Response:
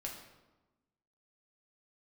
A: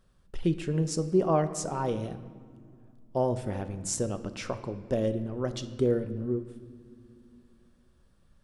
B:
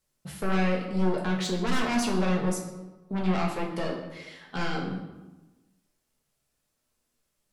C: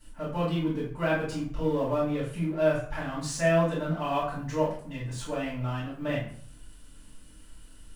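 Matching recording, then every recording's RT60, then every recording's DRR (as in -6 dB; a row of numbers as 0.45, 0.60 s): B; not exponential, 1.1 s, 0.55 s; 9.5, -1.5, -12.0 dB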